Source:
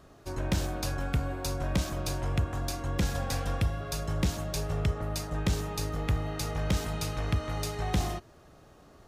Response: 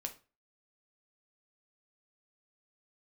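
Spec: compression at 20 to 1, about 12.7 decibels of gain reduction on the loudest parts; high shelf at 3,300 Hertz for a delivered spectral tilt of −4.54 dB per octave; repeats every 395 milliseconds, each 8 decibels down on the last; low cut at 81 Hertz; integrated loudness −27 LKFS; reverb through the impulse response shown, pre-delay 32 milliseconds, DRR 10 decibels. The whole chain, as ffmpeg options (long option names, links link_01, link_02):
-filter_complex "[0:a]highpass=81,highshelf=frequency=3300:gain=5,acompressor=threshold=-36dB:ratio=20,aecho=1:1:395|790|1185|1580|1975:0.398|0.159|0.0637|0.0255|0.0102,asplit=2[link_01][link_02];[1:a]atrim=start_sample=2205,adelay=32[link_03];[link_02][link_03]afir=irnorm=-1:irlink=0,volume=-8.5dB[link_04];[link_01][link_04]amix=inputs=2:normalize=0,volume=13dB"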